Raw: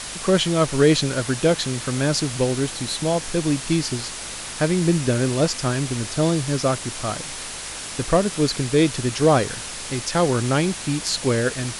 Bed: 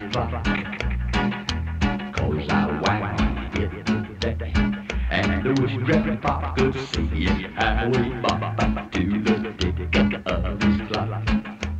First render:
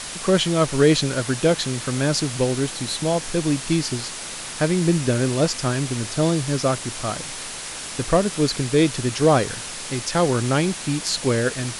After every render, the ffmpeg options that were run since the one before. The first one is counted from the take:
ffmpeg -i in.wav -af "bandreject=frequency=50:width_type=h:width=4,bandreject=frequency=100:width_type=h:width=4" out.wav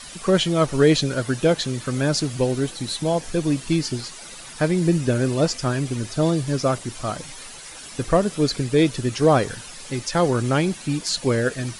ffmpeg -i in.wav -af "afftdn=noise_reduction=11:noise_floor=-33" out.wav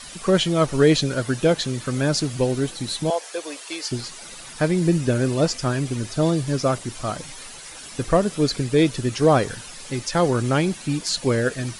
ffmpeg -i in.wav -filter_complex "[0:a]asettb=1/sr,asplit=3[link_01][link_02][link_03];[link_01]atrim=end=3.104[link_04];[link_02]atrim=start=3.1:end=3.91,asetpts=PTS-STARTPTS,afade=type=in:duration=0.004:curve=qsin,afade=type=out:start_time=0.806:duration=0.004:curve=qsin,highpass=frequency=470:width=0.5412,highpass=frequency=470:width=1.3066[link_05];[link_03]atrim=start=3.906[link_06];[link_04][link_05]acrossfade=duration=0.004:curve1=hsin:curve2=qsin[link_07];[link_07][link_06]acrossfade=duration=0.004:curve1=qsin:curve2=hsin" out.wav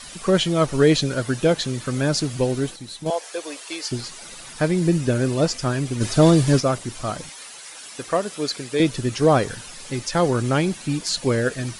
ffmpeg -i in.wav -filter_complex "[0:a]asplit=3[link_01][link_02][link_03];[link_01]afade=type=out:start_time=6:duration=0.02[link_04];[link_02]acontrast=81,afade=type=in:start_time=6:duration=0.02,afade=type=out:start_time=6.59:duration=0.02[link_05];[link_03]afade=type=in:start_time=6.59:duration=0.02[link_06];[link_04][link_05][link_06]amix=inputs=3:normalize=0,asettb=1/sr,asplit=3[link_07][link_08][link_09];[link_07]atrim=end=7.294[link_10];[link_08]atrim=start=7.29:end=8.8,asetpts=PTS-STARTPTS,afade=type=in:duration=0.004:curve=qsin,afade=type=out:start_time=1.506:duration=0.004:curve=qsin,highpass=frequency=580:poles=1[link_11];[link_09]atrim=start=8.796[link_12];[link_10][link_11]acrossfade=duration=0.004:curve1=hsin:curve2=qsin[link_13];[link_13][link_12]acrossfade=duration=0.004:curve1=qsin:curve2=hsin,asplit=3[link_14][link_15][link_16];[link_14]atrim=end=2.76,asetpts=PTS-STARTPTS,afade=type=out:start_time=2.33:duration=0.43:curve=log:silence=0.375837[link_17];[link_15]atrim=start=2.76:end=3.06,asetpts=PTS-STARTPTS,volume=-8.5dB[link_18];[link_16]atrim=start=3.06,asetpts=PTS-STARTPTS,afade=type=in:duration=0.43:curve=log:silence=0.375837[link_19];[link_17][link_18][link_19]concat=n=3:v=0:a=1" out.wav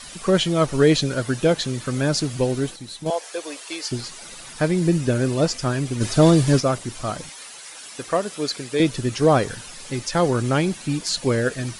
ffmpeg -i in.wav -af anull out.wav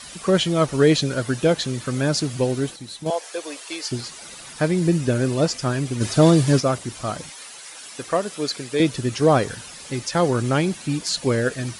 ffmpeg -i in.wav -af "highpass=44" out.wav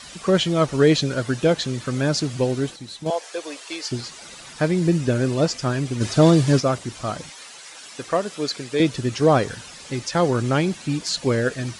ffmpeg -i in.wav -af "equalizer=frequency=10000:width=2.4:gain=-8.5" out.wav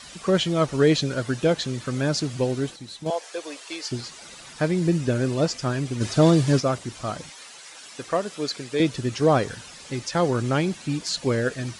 ffmpeg -i in.wav -af "volume=-2.5dB" out.wav

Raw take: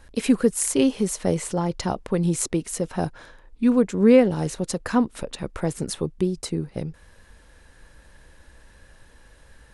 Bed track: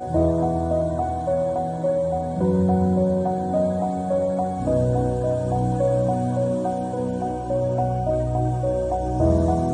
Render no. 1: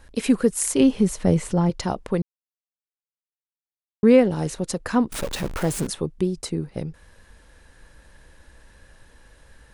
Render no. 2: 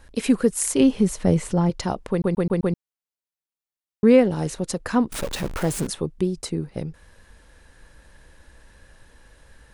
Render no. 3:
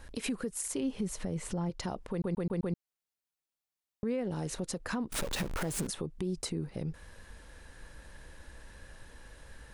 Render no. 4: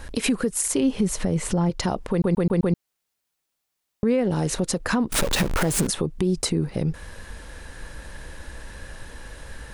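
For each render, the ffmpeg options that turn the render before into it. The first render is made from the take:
ffmpeg -i in.wav -filter_complex "[0:a]asettb=1/sr,asplit=3[link_01][link_02][link_03];[link_01]atrim=end=0.804[link_04];[link_02]atrim=start=0.8:end=1.7,asetpts=PTS-STARTPTS,afade=type=in:duration=0.004:curve=qsin,afade=type=out:start_time=0.896:duration=0.004:curve=qsin,bass=frequency=250:gain=8,treble=frequency=4000:gain=-4[link_05];[link_03]atrim=start=1.696[link_06];[link_04][link_05]acrossfade=duration=0.004:curve1=hsin:curve2=qsin[link_07];[link_07][link_06]acrossfade=duration=0.004:curve1=qsin:curve2=hsin,asettb=1/sr,asplit=3[link_08][link_09][link_10];[link_08]atrim=end=5.124[link_11];[link_09]atrim=start=5.12:end=5.87,asetpts=PTS-STARTPTS,afade=type=in:duration=0.004:curve=qsin,afade=type=out:start_time=0.746:duration=0.004:curve=qsin,aeval=exprs='val(0)+0.5*0.0447*sgn(val(0))':channel_layout=same[link_12];[link_10]atrim=start=5.866[link_13];[link_11][link_12]acrossfade=duration=0.004:curve1=hsin:curve2=qsin[link_14];[link_14][link_13]acrossfade=duration=0.004:curve1=qsin:curve2=hsin,asplit=3[link_15][link_16][link_17];[link_15]atrim=end=2.22,asetpts=PTS-STARTPTS,afade=type=out:start_time=2.216:duration=0.004:curve=hsin[link_18];[link_16]atrim=start=2.22:end=4.03,asetpts=PTS-STARTPTS,volume=0[link_19];[link_17]atrim=start=4.03,asetpts=PTS-STARTPTS,afade=type=in:duration=0.004:curve=hsin[link_20];[link_18][link_19][link_20]concat=n=3:v=0:a=1" out.wav
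ffmpeg -i in.wav -filter_complex "[0:a]asplit=6[link_01][link_02][link_03][link_04][link_05][link_06];[link_01]atrim=end=2.242[link_07];[link_02]atrim=start=2.108:end=2.242[link_08];[link_03]atrim=start=2.108:end=2.242[link_09];[link_04]atrim=start=2.108:end=2.242[link_10];[link_05]atrim=start=2.108:end=2.242[link_11];[link_06]atrim=start=2.758[link_12];[link_07][link_08]acrossfade=duration=0.004:curve1=hsin:curve2=hsin[link_13];[link_13][link_09]acrossfade=duration=0.004:curve1=hsin:curve2=hsin[link_14];[link_14][link_10]acrossfade=duration=0.004:curve1=hsin:curve2=hsin[link_15];[link_15][link_11]acrossfade=duration=0.004:curve1=hsin:curve2=hsin[link_16];[link_16][link_12]acrossfade=duration=0.004:curve1=hsin:curve2=hsin" out.wav
ffmpeg -i in.wav -af "acompressor=threshold=-27dB:ratio=6,alimiter=level_in=1dB:limit=-24dB:level=0:latency=1:release=84,volume=-1dB" out.wav
ffmpeg -i in.wav -af "volume=12dB" out.wav

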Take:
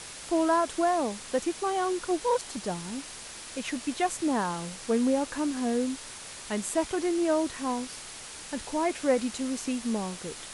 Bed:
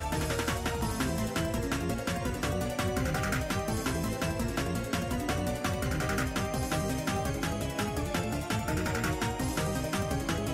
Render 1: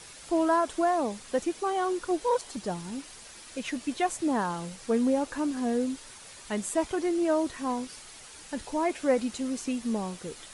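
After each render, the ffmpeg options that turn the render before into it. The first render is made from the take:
ffmpeg -i in.wav -af "afftdn=noise_reduction=7:noise_floor=-43" out.wav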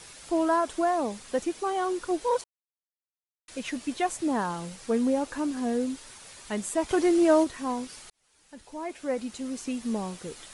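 ffmpeg -i in.wav -filter_complex "[0:a]asplit=3[link_01][link_02][link_03];[link_01]afade=type=out:start_time=6.88:duration=0.02[link_04];[link_02]acontrast=40,afade=type=in:start_time=6.88:duration=0.02,afade=type=out:start_time=7.43:duration=0.02[link_05];[link_03]afade=type=in:start_time=7.43:duration=0.02[link_06];[link_04][link_05][link_06]amix=inputs=3:normalize=0,asplit=4[link_07][link_08][link_09][link_10];[link_07]atrim=end=2.44,asetpts=PTS-STARTPTS,afade=type=out:start_time=2.436:duration=0.004:curve=hsin[link_11];[link_08]atrim=start=2.44:end=3.48,asetpts=PTS-STARTPTS,volume=0[link_12];[link_09]atrim=start=3.48:end=8.1,asetpts=PTS-STARTPTS,afade=type=in:duration=0.004:curve=hsin,afade=type=out:start_time=4.616:duration=0.004:curve=hsin[link_13];[link_10]atrim=start=8.1,asetpts=PTS-STARTPTS,afade=type=in:duration=1.84[link_14];[link_11][link_12][link_13][link_14]concat=n=4:v=0:a=1" out.wav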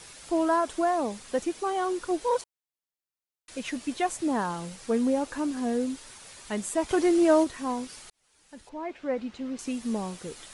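ffmpeg -i in.wav -filter_complex "[0:a]asettb=1/sr,asplit=3[link_01][link_02][link_03];[link_01]atrim=end=8.694[link_04];[link_02]atrim=start=8.69:end=9.59,asetpts=PTS-STARTPTS,afade=type=in:duration=0.004:curve=qsin,afade=type=out:start_time=0.896:duration=0.004:curve=qsin,lowpass=3300[link_05];[link_03]atrim=start=9.586[link_06];[link_04][link_05]acrossfade=duration=0.004:curve1=hsin:curve2=qsin[link_07];[link_07][link_06]acrossfade=duration=0.004:curve1=qsin:curve2=hsin" out.wav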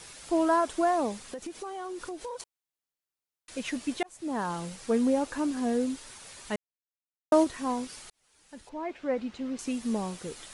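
ffmpeg -i in.wav -filter_complex "[0:a]asettb=1/sr,asplit=3[link_01][link_02][link_03];[link_01]atrim=end=1.144[link_04];[link_02]atrim=start=1.14:end=2.4,asetpts=PTS-STARTPTS,afade=type=in:duration=0.004:curve=qsin,afade=type=out:start_time=1.256:duration=0.004:curve=qsin,acompressor=threshold=-34dB:ratio=12:attack=3.2:release=140:knee=1:detection=peak[link_05];[link_03]atrim=start=2.396[link_06];[link_04][link_05]acrossfade=duration=0.004:curve1=hsin:curve2=qsin[link_07];[link_07][link_06]acrossfade=duration=0.004:curve1=qsin:curve2=hsin,asplit=4[link_08][link_09][link_10][link_11];[link_08]atrim=end=4.03,asetpts=PTS-STARTPTS,afade=type=out:start_time=4.026:duration=0.004:curve=hsin[link_12];[link_09]atrim=start=4.03:end=6.56,asetpts=PTS-STARTPTS,afade=type=in:duration=0.53,afade=type=out:start_time=2.526:duration=0.004:curve=hsin[link_13];[link_10]atrim=start=6.56:end=7.32,asetpts=PTS-STARTPTS,volume=0[link_14];[link_11]atrim=start=7.32,asetpts=PTS-STARTPTS,afade=type=in:duration=0.004:curve=hsin[link_15];[link_12][link_13][link_14][link_15]concat=n=4:v=0:a=1" out.wav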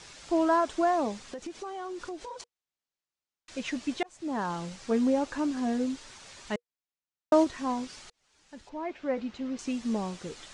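ffmpeg -i in.wav -af "lowpass=frequency=7300:width=0.5412,lowpass=frequency=7300:width=1.3066,bandreject=frequency=480:width=16" out.wav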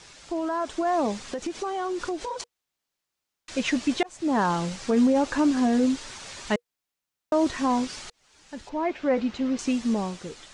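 ffmpeg -i in.wav -af "alimiter=limit=-22.5dB:level=0:latency=1:release=28,dynaudnorm=framelen=280:gausssize=7:maxgain=8.5dB" out.wav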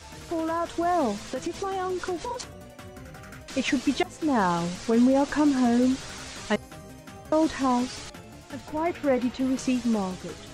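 ffmpeg -i in.wav -i bed.wav -filter_complex "[1:a]volume=-13dB[link_01];[0:a][link_01]amix=inputs=2:normalize=0" out.wav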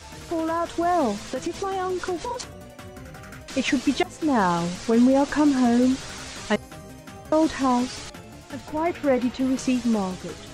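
ffmpeg -i in.wav -af "volume=2.5dB" out.wav

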